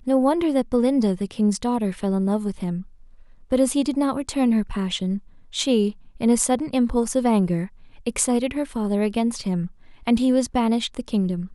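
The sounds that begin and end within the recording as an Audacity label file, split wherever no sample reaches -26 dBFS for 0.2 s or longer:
3.520000	5.170000	sound
5.550000	5.900000	sound
6.210000	7.650000	sound
8.060000	9.670000	sound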